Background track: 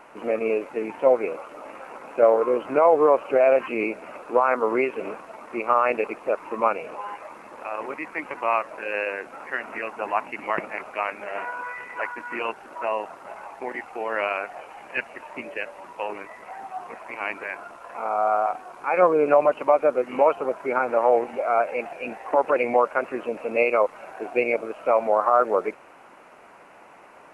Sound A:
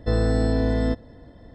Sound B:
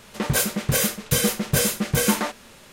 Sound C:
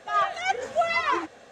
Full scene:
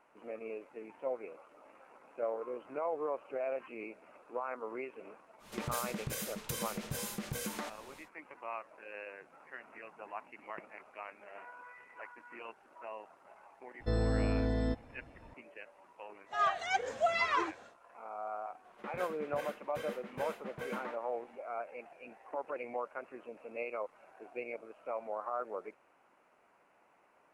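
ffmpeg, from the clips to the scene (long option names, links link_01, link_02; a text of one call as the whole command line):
ffmpeg -i bed.wav -i cue0.wav -i cue1.wav -i cue2.wav -filter_complex "[2:a]asplit=2[link_01][link_02];[3:a]asplit=2[link_03][link_04];[0:a]volume=-19dB[link_05];[link_01]acompressor=threshold=-28dB:ratio=10:attack=20:release=99:knee=1:detection=rms[link_06];[link_03]asuperpass=centerf=160:order=4:qfactor=6.4[link_07];[link_02]acrossover=split=250 2600:gain=0.178 1 0.0794[link_08][link_09][link_10];[link_08][link_09][link_10]amix=inputs=3:normalize=0[link_11];[link_06]atrim=end=2.72,asetpts=PTS-STARTPTS,volume=-9dB,afade=type=in:duration=0.1,afade=type=out:start_time=2.62:duration=0.1,adelay=5380[link_12];[link_07]atrim=end=1.51,asetpts=PTS-STARTPTS,volume=-17.5dB,afade=type=in:duration=0.004:curve=hsin,afade=type=out:start_time=1.506:duration=0.004:curve=hsin,adelay=8990[link_13];[1:a]atrim=end=1.54,asetpts=PTS-STARTPTS,volume=-10dB,afade=type=in:duration=0.004:curve=hsin,afade=type=out:start_time=1.536:duration=0.004:curve=hsin,adelay=608580S[link_14];[link_04]atrim=end=1.51,asetpts=PTS-STARTPTS,volume=-6.5dB,afade=type=in:duration=0.1,afade=type=out:start_time=1.41:duration=0.1,adelay=16250[link_15];[link_11]atrim=end=2.72,asetpts=PTS-STARTPTS,volume=-16dB,afade=type=in:duration=0.004:curve=hsin,afade=type=out:start_time=2.716:duration=0.004:curve=hsin,adelay=18640[link_16];[link_05][link_12][link_13][link_14][link_15][link_16]amix=inputs=6:normalize=0" out.wav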